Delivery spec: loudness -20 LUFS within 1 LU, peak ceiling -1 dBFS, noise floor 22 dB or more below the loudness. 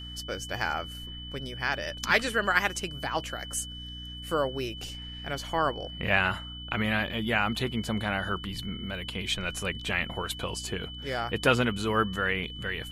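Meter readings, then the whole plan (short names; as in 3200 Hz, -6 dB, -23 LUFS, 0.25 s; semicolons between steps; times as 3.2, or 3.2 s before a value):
hum 60 Hz; harmonics up to 300 Hz; hum level -41 dBFS; steady tone 3000 Hz; tone level -41 dBFS; loudness -30.0 LUFS; peak -8.5 dBFS; loudness target -20.0 LUFS
-> notches 60/120/180/240/300 Hz; notch 3000 Hz, Q 30; gain +10 dB; limiter -1 dBFS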